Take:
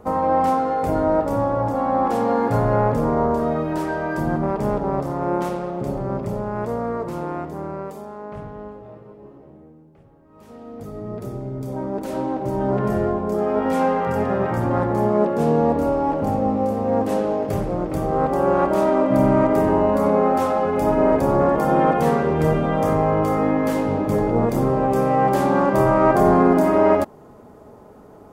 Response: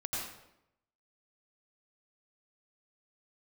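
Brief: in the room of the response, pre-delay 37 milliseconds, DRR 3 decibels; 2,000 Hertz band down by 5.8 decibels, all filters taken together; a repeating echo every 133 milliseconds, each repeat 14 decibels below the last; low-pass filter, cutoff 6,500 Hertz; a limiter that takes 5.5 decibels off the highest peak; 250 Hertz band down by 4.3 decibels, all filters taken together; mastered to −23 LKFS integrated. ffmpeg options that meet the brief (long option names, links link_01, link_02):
-filter_complex "[0:a]lowpass=6500,equalizer=frequency=250:width_type=o:gain=-5.5,equalizer=frequency=2000:width_type=o:gain=-8,alimiter=limit=-11dB:level=0:latency=1,aecho=1:1:133|266:0.2|0.0399,asplit=2[link_01][link_02];[1:a]atrim=start_sample=2205,adelay=37[link_03];[link_02][link_03]afir=irnorm=-1:irlink=0,volume=-6.5dB[link_04];[link_01][link_04]amix=inputs=2:normalize=0,volume=-2dB"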